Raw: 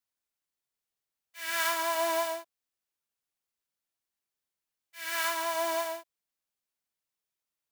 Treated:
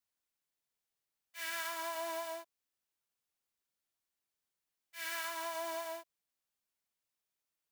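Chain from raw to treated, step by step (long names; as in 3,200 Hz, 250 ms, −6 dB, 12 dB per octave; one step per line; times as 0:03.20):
downward compressor, threshold −36 dBFS, peak gain reduction 10.5 dB
level −1 dB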